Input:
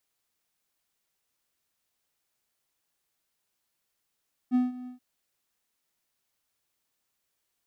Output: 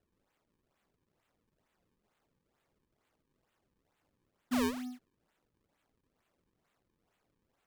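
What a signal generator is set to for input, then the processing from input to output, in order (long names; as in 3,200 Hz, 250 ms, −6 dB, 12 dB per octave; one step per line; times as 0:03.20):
note with an ADSR envelope triangle 250 Hz, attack 40 ms, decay 167 ms, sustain −18 dB, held 0.36 s, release 121 ms −17 dBFS
brickwall limiter −24.5 dBFS
sample-and-hold swept by an LFO 37×, swing 160% 2.2 Hz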